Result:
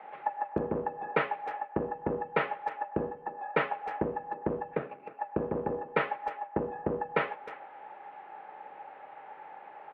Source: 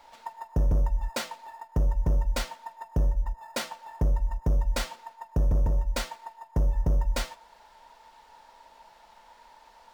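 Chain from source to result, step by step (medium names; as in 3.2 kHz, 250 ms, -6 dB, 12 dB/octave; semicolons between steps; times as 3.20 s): 4.72–5.19 s: median filter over 41 samples; mistuned SSB -84 Hz 280–2500 Hz; speakerphone echo 310 ms, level -15 dB; trim +7 dB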